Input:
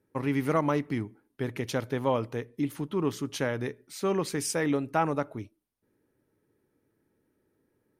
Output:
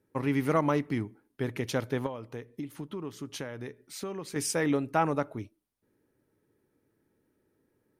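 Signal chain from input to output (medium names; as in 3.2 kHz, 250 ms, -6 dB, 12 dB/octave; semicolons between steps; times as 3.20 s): 2.06–4.36 s: compression 6:1, threshold -35 dBFS, peak gain reduction 13 dB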